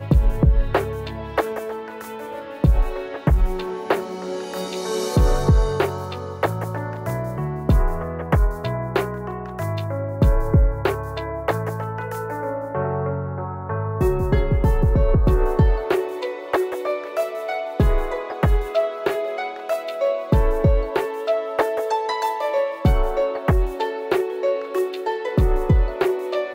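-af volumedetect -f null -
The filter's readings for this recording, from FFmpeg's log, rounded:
mean_volume: -20.5 dB
max_volume: -7.2 dB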